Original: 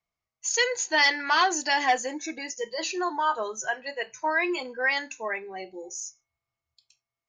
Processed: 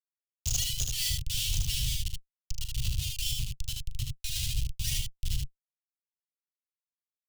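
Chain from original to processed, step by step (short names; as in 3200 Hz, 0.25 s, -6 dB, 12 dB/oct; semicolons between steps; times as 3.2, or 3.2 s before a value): dynamic EQ 660 Hz, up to +3 dB, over -42 dBFS, Q 3.1; Schmitt trigger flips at -24 dBFS; Chebyshev band-stop 130–2900 Hz, order 4; soft clip -22.5 dBFS, distortion -22 dB; on a send: early reflections 39 ms -11 dB, 76 ms -3 dB; on the sum: gain +4 dB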